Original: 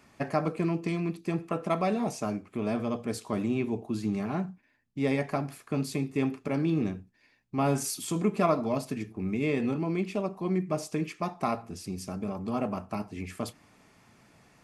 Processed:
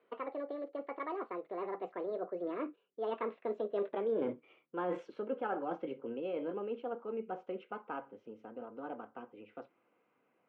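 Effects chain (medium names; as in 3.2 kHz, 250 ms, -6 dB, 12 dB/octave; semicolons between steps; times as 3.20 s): gliding tape speed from 154% -> 125%; Doppler pass-by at 4.04 s, 36 m/s, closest 13 m; cabinet simulation 330–2300 Hz, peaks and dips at 490 Hz +7 dB, 850 Hz -3 dB, 1.8 kHz -7 dB; reverse; compression 4:1, threshold -46 dBFS, peak gain reduction 19.5 dB; reverse; trim +11 dB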